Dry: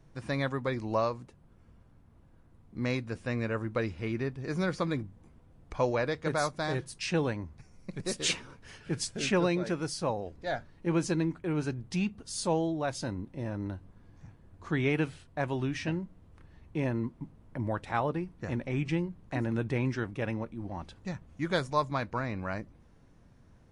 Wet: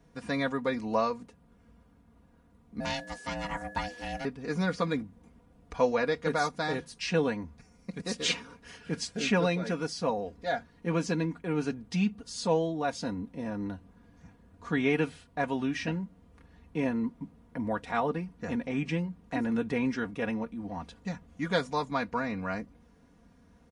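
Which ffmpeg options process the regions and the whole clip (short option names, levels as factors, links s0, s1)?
-filter_complex "[0:a]asettb=1/sr,asplit=3[s0][s1][s2];[s0]atrim=end=2.804[s3];[s1]atrim=start=2.8:end=4.25,asetpts=PTS-STARTPTS,afade=t=in:d=0.004:c=qsin,afade=t=out:st=1.446:d=0.004:c=qsin,bass=f=250:g=-6,treble=f=4000:g=14,aeval=exprs='val(0)*sin(2*PI*410*n/s)':c=same,aeval=exprs='val(0)+0.00282*sin(2*PI*1700*n/s)':c=same[s4];[s2]atrim=start=4.246[s5];[s3][s4]acrossfade=d=0.004:c1=hsin:c2=qsin[s6];[s6][s5]acrossfade=d=0.004:c1=qsin:c2=hsin,acrossover=split=6800[s7][s8];[s8]acompressor=threshold=0.00141:ratio=4:attack=1:release=60[s9];[s7][s9]amix=inputs=2:normalize=0,highpass=53,aecho=1:1:4.2:0.74"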